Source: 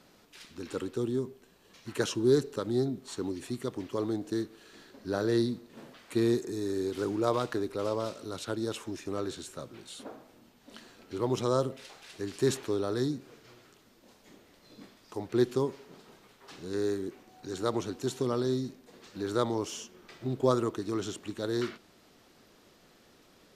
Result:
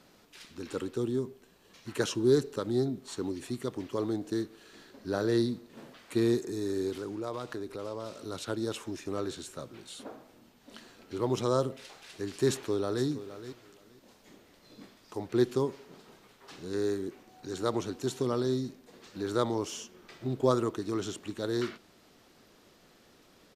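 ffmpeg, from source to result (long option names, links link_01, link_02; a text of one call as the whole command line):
ffmpeg -i in.wav -filter_complex "[0:a]asettb=1/sr,asplit=3[link_01][link_02][link_03];[link_01]atrim=end=6.954[link_04];[link_02]atrim=start=6.95:end=8.2,asetpts=PTS-STARTPTS,afade=type=in:duration=0.004:curve=qsin,afade=type=out:start_time=1.246:duration=0.004:curve=qsin,acompressor=threshold=-38dB:ratio=2:attack=3.2:release=140:knee=1:detection=peak[link_05];[link_03]atrim=start=8.196[link_06];[link_04][link_05]acrossfade=duration=0.004:curve1=hsin:curve2=qsin[link_07];[link_07][link_06]acrossfade=duration=0.004:curve1=qsin:curve2=hsin,asplit=2[link_08][link_09];[link_09]afade=type=in:start_time=12.5:duration=0.01,afade=type=out:start_time=13.05:duration=0.01,aecho=0:1:470|940:0.223872|0.0335808[link_10];[link_08][link_10]amix=inputs=2:normalize=0" out.wav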